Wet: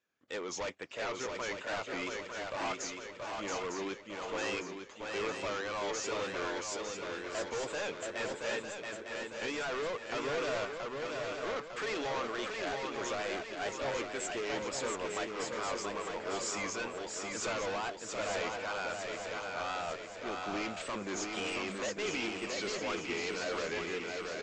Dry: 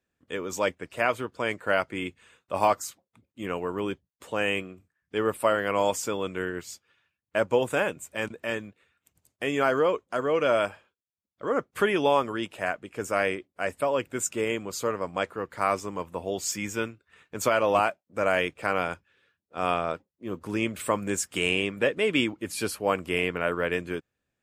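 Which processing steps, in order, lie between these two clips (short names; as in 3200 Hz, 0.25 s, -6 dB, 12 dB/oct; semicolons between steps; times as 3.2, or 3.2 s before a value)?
HPF 550 Hz 6 dB/oct; limiter -17 dBFS, peak gain reduction 7.5 dB; overloaded stage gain 34.5 dB; downsampling 16000 Hz; wow and flutter 99 cents; swung echo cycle 0.903 s, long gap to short 3:1, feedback 52%, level -4 dB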